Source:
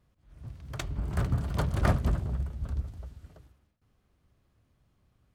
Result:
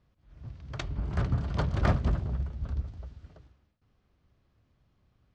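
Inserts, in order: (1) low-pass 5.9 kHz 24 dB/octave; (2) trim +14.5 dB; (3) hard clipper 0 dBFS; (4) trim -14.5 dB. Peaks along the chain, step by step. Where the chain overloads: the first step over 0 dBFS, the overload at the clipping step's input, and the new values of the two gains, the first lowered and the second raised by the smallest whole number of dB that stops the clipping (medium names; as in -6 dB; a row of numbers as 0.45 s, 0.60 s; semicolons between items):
-11.5 dBFS, +3.0 dBFS, 0.0 dBFS, -14.5 dBFS; step 2, 3.0 dB; step 2 +11.5 dB, step 4 -11.5 dB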